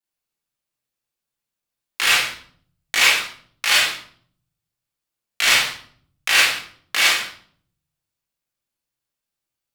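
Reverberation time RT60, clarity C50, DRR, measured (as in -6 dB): 0.55 s, 2.5 dB, -5.5 dB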